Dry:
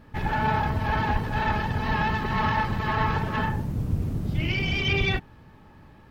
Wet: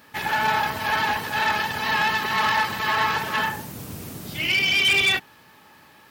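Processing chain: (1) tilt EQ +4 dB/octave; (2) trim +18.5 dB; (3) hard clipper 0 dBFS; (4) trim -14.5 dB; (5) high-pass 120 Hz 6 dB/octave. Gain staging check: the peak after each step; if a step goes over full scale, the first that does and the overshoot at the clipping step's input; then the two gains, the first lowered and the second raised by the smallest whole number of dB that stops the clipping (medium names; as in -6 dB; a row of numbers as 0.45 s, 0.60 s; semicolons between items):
-11.0 dBFS, +7.5 dBFS, 0.0 dBFS, -14.5 dBFS, -13.0 dBFS; step 2, 7.5 dB; step 2 +10.5 dB, step 4 -6.5 dB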